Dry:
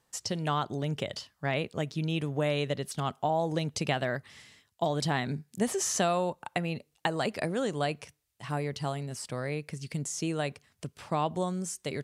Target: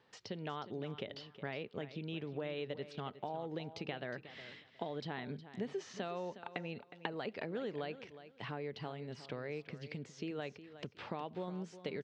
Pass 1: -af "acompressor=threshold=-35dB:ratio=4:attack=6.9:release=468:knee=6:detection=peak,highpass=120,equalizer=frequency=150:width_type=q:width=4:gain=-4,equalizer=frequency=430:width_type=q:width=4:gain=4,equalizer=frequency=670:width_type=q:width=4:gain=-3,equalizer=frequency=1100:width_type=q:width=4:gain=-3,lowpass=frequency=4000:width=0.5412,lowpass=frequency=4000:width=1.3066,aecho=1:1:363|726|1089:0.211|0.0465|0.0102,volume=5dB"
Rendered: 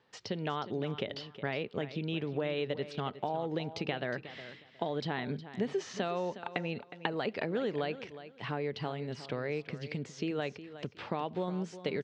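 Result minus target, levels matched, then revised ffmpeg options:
downward compressor: peak gain reduction −7 dB
-af "acompressor=threshold=-44.5dB:ratio=4:attack=6.9:release=468:knee=6:detection=peak,highpass=120,equalizer=frequency=150:width_type=q:width=4:gain=-4,equalizer=frequency=430:width_type=q:width=4:gain=4,equalizer=frequency=670:width_type=q:width=4:gain=-3,equalizer=frequency=1100:width_type=q:width=4:gain=-3,lowpass=frequency=4000:width=0.5412,lowpass=frequency=4000:width=1.3066,aecho=1:1:363|726|1089:0.211|0.0465|0.0102,volume=5dB"

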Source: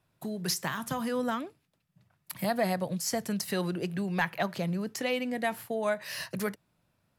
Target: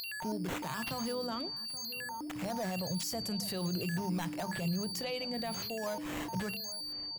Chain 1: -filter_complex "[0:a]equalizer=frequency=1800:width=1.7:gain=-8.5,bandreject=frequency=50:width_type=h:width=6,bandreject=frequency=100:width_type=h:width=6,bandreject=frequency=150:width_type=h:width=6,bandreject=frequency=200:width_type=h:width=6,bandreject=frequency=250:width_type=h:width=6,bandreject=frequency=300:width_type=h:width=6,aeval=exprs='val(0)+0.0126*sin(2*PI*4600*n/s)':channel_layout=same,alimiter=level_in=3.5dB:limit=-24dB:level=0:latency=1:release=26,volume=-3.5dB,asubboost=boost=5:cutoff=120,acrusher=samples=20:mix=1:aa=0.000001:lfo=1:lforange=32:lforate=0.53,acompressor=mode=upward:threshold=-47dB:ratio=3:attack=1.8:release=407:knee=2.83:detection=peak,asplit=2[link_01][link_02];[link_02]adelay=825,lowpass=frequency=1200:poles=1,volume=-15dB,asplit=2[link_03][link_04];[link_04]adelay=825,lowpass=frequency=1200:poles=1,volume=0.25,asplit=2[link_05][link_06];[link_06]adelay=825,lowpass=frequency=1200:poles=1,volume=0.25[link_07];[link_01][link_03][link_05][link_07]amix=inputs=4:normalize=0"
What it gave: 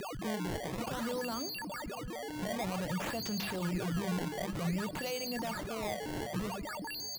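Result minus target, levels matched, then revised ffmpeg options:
sample-and-hold swept by an LFO: distortion +5 dB
-filter_complex "[0:a]equalizer=frequency=1800:width=1.7:gain=-8.5,bandreject=frequency=50:width_type=h:width=6,bandreject=frequency=100:width_type=h:width=6,bandreject=frequency=150:width_type=h:width=6,bandreject=frequency=200:width_type=h:width=6,bandreject=frequency=250:width_type=h:width=6,bandreject=frequency=300:width_type=h:width=6,aeval=exprs='val(0)+0.0126*sin(2*PI*4600*n/s)':channel_layout=same,alimiter=level_in=3.5dB:limit=-24dB:level=0:latency=1:release=26,volume=-3.5dB,asubboost=boost=5:cutoff=120,acrusher=samples=5:mix=1:aa=0.000001:lfo=1:lforange=8:lforate=0.53,acompressor=mode=upward:threshold=-47dB:ratio=3:attack=1.8:release=407:knee=2.83:detection=peak,asplit=2[link_01][link_02];[link_02]adelay=825,lowpass=frequency=1200:poles=1,volume=-15dB,asplit=2[link_03][link_04];[link_04]adelay=825,lowpass=frequency=1200:poles=1,volume=0.25,asplit=2[link_05][link_06];[link_06]adelay=825,lowpass=frequency=1200:poles=1,volume=0.25[link_07];[link_01][link_03][link_05][link_07]amix=inputs=4:normalize=0"

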